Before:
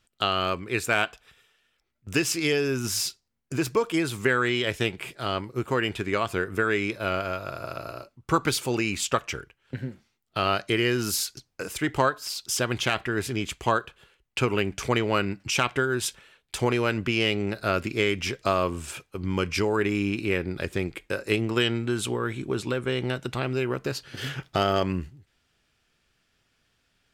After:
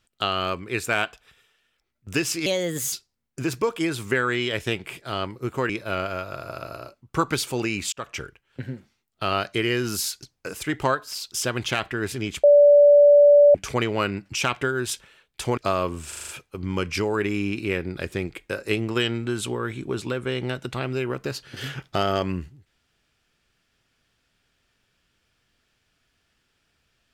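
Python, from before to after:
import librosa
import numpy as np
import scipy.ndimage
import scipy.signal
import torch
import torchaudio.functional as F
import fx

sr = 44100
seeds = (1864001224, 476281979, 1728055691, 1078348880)

y = fx.edit(x, sr, fx.speed_span(start_s=2.46, length_s=0.6, speed=1.29),
    fx.cut(start_s=5.83, length_s=1.01),
    fx.fade_in_span(start_s=9.07, length_s=0.25),
    fx.bleep(start_s=13.58, length_s=1.11, hz=580.0, db=-9.5),
    fx.cut(start_s=16.72, length_s=1.66),
    fx.stutter(start_s=18.89, slice_s=0.04, count=6), tone=tone)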